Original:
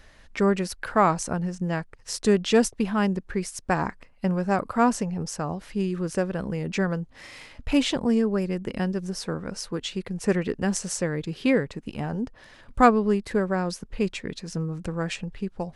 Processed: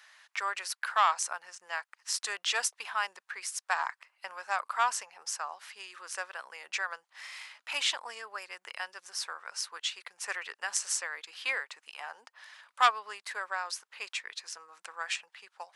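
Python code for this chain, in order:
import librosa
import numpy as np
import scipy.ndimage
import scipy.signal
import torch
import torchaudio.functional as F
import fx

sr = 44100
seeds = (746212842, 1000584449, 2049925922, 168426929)

y = scipy.signal.sosfilt(scipy.signal.butter(4, 940.0, 'highpass', fs=sr, output='sos'), x)
y = fx.transformer_sat(y, sr, knee_hz=1800.0)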